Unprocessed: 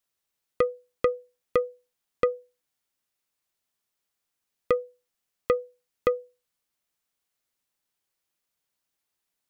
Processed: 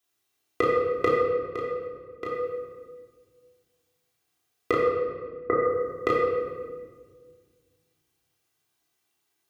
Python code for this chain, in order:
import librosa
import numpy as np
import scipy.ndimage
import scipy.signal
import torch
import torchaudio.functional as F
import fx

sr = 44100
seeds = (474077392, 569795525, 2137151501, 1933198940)

y = scipy.signal.sosfilt(scipy.signal.butter(2, 100.0, 'highpass', fs=sr, output='sos'), x)
y = y + 0.52 * np.pad(y, (int(2.6 * sr / 1000.0), 0))[:len(y)]
y = fx.room_early_taps(y, sr, ms=(19, 32), db=(-10.0, -4.5))
y = fx.level_steps(y, sr, step_db=15, at=(1.17, 2.27), fade=0.02)
y = fx.ellip_lowpass(y, sr, hz=1900.0, order=4, stop_db=40, at=(4.74, 5.62))
y = fx.room_shoebox(y, sr, seeds[0], volume_m3=1800.0, walls='mixed', distance_m=3.1)